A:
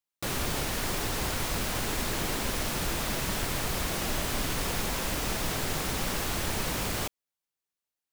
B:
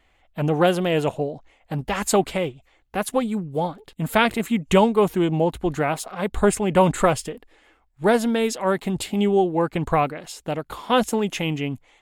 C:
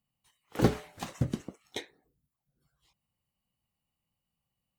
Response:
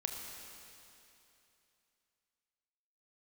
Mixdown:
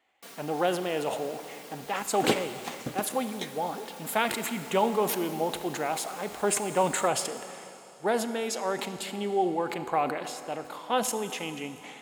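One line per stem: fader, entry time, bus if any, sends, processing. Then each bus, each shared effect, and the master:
−10.5 dB, 0.00 s, send −14 dB, lower of the sound and its delayed copy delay 4.3 ms; automatic ducking −7 dB, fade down 0.20 s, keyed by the second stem
−13.0 dB, 0.00 s, send −3 dB, parametric band 800 Hz +6 dB 0.23 octaves; level that may fall only so fast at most 53 dB per second
−0.5 dB, 1.65 s, send −10.5 dB, no processing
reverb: on, RT60 2.9 s, pre-delay 26 ms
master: high-pass filter 270 Hz 12 dB per octave

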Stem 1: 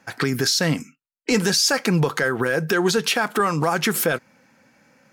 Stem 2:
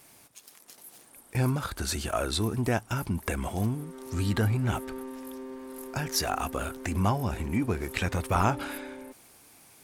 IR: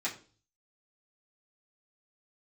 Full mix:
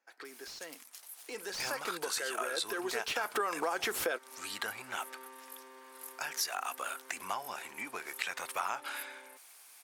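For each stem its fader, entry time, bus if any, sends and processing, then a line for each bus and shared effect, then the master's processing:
0:01.20 −23 dB → 0:01.68 −14 dB → 0:02.95 −14 dB → 0:03.35 −3.5 dB, 0.00 s, no send, high-pass filter 350 Hz 24 dB per octave; slew-rate limiting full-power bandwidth 400 Hz
0.0 dB, 0.25 s, no send, high-pass filter 990 Hz 12 dB per octave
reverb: not used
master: downward compressor 3 to 1, threshold −32 dBFS, peak gain reduction 9.5 dB

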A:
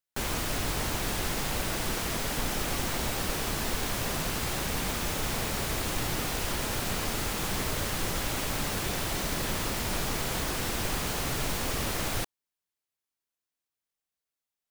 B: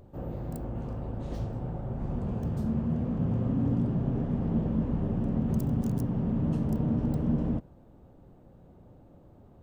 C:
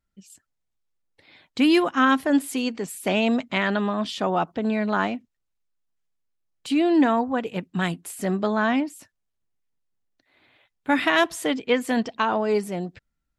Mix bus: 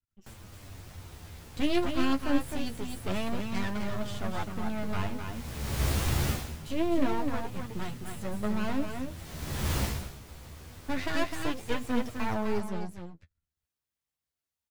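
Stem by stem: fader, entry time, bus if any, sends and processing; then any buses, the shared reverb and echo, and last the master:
+2.0 dB, 0.10 s, no send, echo send −23 dB, automatic ducking −21 dB, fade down 0.35 s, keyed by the third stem
−10.0 dB, 1.60 s, no send, no echo send, downward compressor, threshold −37 dBFS, peak gain reduction 14 dB
−3.5 dB, 0.00 s, no send, echo send −6 dB, half-wave rectification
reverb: not used
echo: single-tap delay 257 ms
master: parametric band 82 Hz +12.5 dB 1.8 octaves; flanger 0.25 Hz, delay 7.9 ms, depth 7.2 ms, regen +27%

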